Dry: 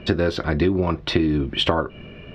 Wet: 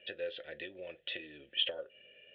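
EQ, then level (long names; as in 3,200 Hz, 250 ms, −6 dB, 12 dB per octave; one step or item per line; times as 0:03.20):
formant filter e
low-pass with resonance 3,300 Hz, resonance Q 7.3
parametric band 260 Hz −8 dB 2.4 octaves
−8.0 dB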